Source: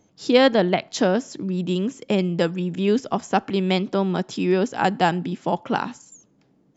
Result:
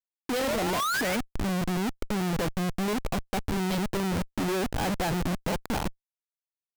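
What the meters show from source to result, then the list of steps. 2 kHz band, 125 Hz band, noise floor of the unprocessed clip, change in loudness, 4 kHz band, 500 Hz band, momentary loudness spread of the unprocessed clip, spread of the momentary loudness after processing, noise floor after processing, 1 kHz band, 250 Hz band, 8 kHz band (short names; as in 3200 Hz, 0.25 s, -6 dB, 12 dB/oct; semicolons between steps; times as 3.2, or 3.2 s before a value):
-4.0 dB, -4.5 dB, -62 dBFS, -7.0 dB, -5.5 dB, -10.0 dB, 9 LU, 5 LU, under -85 dBFS, -7.0 dB, -7.0 dB, n/a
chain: painted sound rise, 0.39–1.17, 460–2400 Hz -23 dBFS; low-pass opened by the level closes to 2800 Hz, open at -17 dBFS; Schmitt trigger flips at -26.5 dBFS; gain -5 dB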